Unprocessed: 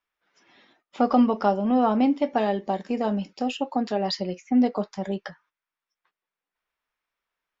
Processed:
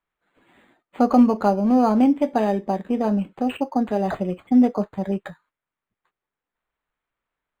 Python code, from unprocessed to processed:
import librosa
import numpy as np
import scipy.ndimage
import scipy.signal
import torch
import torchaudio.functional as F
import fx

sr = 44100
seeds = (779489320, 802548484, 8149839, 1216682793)

y = fx.low_shelf(x, sr, hz=190.0, db=7.0)
y = np.interp(np.arange(len(y)), np.arange(len(y))[::8], y[::8])
y = F.gain(torch.from_numpy(y), 2.0).numpy()